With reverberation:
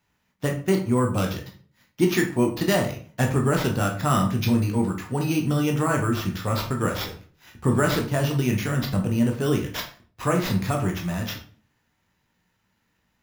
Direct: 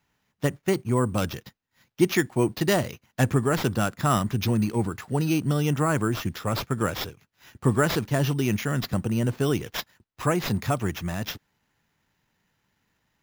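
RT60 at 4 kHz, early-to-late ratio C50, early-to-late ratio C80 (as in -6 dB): 0.35 s, 9.0 dB, 13.5 dB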